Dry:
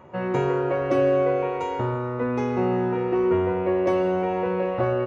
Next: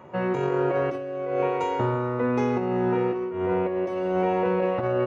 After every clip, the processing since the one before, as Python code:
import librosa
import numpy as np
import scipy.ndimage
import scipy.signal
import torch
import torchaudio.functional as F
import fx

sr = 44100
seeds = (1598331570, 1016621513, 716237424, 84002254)

y = scipy.signal.sosfilt(scipy.signal.butter(2, 98.0, 'highpass', fs=sr, output='sos'), x)
y = fx.over_compress(y, sr, threshold_db=-24.0, ratio=-0.5)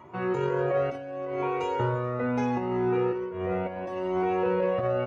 y = fx.comb_cascade(x, sr, direction='rising', hz=0.73)
y = y * 10.0 ** (2.0 / 20.0)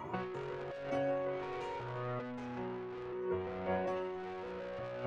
y = 10.0 ** (-31.0 / 20.0) * np.tanh(x / 10.0 ** (-31.0 / 20.0))
y = fx.over_compress(y, sr, threshold_db=-38.0, ratio=-0.5)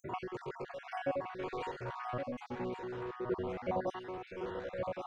y = fx.spec_dropout(x, sr, seeds[0], share_pct=50)
y = y + 10.0 ** (-6.5 / 20.0) * np.pad(y, (int(1119 * sr / 1000.0), 0))[:len(y)]
y = y * 10.0 ** (3.0 / 20.0)